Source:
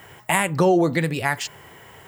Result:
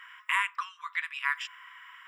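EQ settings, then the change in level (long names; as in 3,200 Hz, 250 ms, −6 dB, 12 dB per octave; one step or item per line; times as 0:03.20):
dynamic equaliser 1,700 Hz, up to −4 dB, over −33 dBFS, Q 0.74
Savitzky-Golay smoothing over 25 samples
linear-phase brick-wall high-pass 960 Hz
0.0 dB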